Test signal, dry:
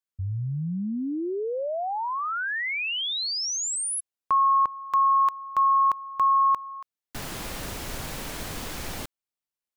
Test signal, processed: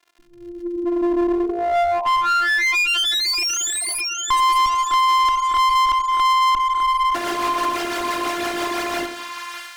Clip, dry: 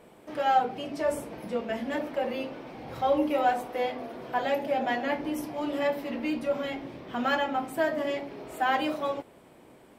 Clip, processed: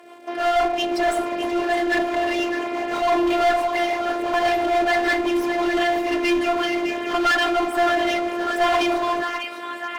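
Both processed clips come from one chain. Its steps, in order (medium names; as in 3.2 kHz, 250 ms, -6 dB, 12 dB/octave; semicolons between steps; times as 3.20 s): high-pass 87 Hz 24 dB/octave; hum notches 50/100/150/200/250/300/350/400/450 Hz; dynamic bell 510 Hz, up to -6 dB, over -39 dBFS, Q 0.87; level rider gain up to 8.5 dB; rotary cabinet horn 6 Hz; crackle 85 per s -52 dBFS; two-band feedback delay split 1 kHz, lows 87 ms, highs 604 ms, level -11.5 dB; robot voice 346 Hz; overdrive pedal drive 25 dB, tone 2.4 kHz, clips at -7 dBFS; one-sided clip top -19.5 dBFS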